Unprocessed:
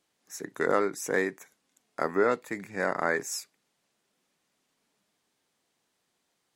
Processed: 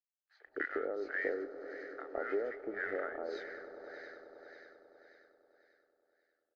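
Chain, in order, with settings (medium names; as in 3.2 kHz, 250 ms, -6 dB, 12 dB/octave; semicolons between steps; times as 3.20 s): knee-point frequency compression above 2.1 kHz 1.5:1; level-controlled noise filter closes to 2.8 kHz, open at -23 dBFS; bass shelf 250 Hz -12 dB; compression, threshold -34 dBFS, peak gain reduction 12.5 dB; crossover distortion -59 dBFS; static phaser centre 420 Hz, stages 4; on a send: echo with a slow build-up 98 ms, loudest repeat 5, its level -17 dB; on the sum: LFO low-pass sine 1.8 Hz 920–1900 Hz; bands offset in time highs, lows 160 ms, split 1 kHz; trim +3.5 dB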